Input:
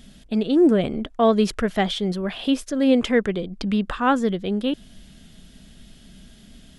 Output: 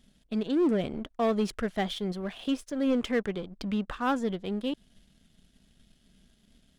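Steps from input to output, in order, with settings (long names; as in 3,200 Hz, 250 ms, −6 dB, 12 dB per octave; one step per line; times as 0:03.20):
soft clipping −15 dBFS, distortion −14 dB
power curve on the samples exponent 1.4
level −4.5 dB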